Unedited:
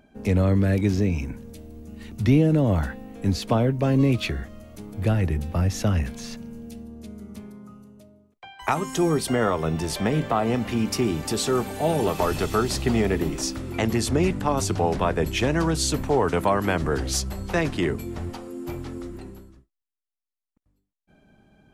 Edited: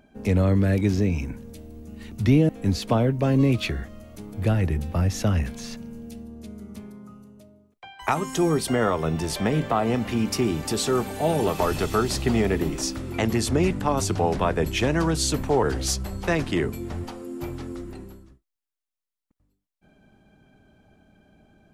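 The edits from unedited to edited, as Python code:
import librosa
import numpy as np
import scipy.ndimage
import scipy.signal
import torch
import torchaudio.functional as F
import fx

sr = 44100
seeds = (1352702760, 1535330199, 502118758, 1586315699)

y = fx.edit(x, sr, fx.cut(start_s=2.49, length_s=0.6),
    fx.cut(start_s=16.23, length_s=0.66), tone=tone)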